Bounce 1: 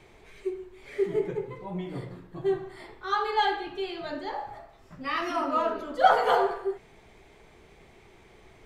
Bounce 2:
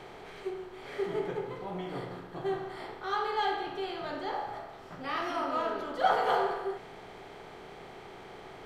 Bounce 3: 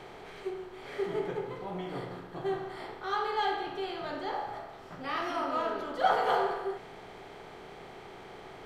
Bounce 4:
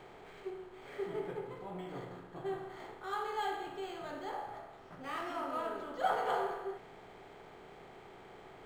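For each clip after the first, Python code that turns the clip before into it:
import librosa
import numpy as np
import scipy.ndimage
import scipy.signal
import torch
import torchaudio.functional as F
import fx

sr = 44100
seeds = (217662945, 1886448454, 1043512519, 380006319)

y1 = fx.bin_compress(x, sr, power=0.6)
y1 = F.gain(torch.from_numpy(y1), -8.0).numpy()
y2 = y1
y3 = np.interp(np.arange(len(y2)), np.arange(len(y2))[::4], y2[::4])
y3 = F.gain(torch.from_numpy(y3), -6.0).numpy()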